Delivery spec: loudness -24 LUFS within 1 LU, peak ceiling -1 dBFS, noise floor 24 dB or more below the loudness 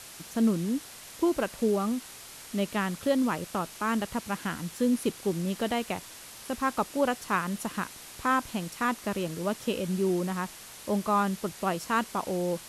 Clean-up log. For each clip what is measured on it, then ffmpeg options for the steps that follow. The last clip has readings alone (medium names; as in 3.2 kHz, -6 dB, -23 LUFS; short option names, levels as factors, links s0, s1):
noise floor -46 dBFS; noise floor target -54 dBFS; loudness -30.0 LUFS; peak level -13.0 dBFS; loudness target -24.0 LUFS
-> -af "afftdn=nr=8:nf=-46"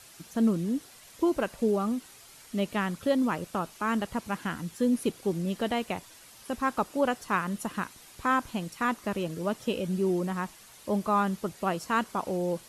noise floor -52 dBFS; noise floor target -54 dBFS
-> -af "afftdn=nr=6:nf=-52"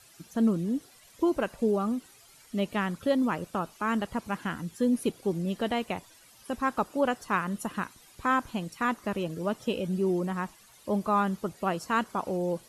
noise floor -56 dBFS; loudness -30.0 LUFS; peak level -13.0 dBFS; loudness target -24.0 LUFS
-> -af "volume=2"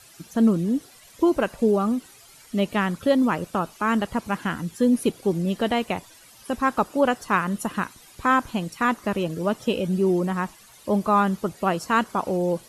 loudness -24.0 LUFS; peak level -7.0 dBFS; noise floor -50 dBFS